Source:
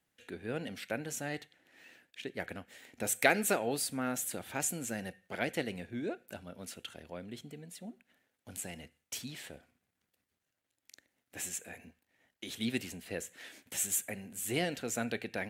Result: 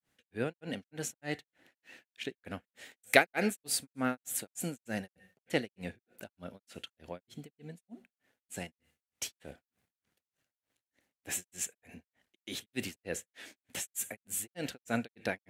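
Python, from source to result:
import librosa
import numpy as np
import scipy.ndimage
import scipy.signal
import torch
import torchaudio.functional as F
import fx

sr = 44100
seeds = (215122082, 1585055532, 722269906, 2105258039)

y = fx.granulator(x, sr, seeds[0], grain_ms=239.0, per_s=3.3, spray_ms=100.0, spread_st=0)
y = y * librosa.db_to_amplitude(5.0)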